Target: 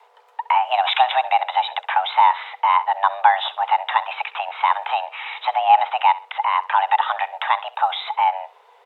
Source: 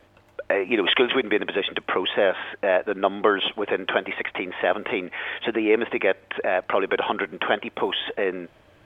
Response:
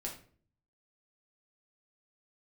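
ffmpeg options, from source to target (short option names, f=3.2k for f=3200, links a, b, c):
-filter_complex "[0:a]equalizer=f=480:t=o:w=0.71:g=10,afreqshift=390,asplit=2[a][b];[b]aecho=0:1:65|130:0.119|0.0333[c];[a][c]amix=inputs=2:normalize=0,volume=-1.5dB"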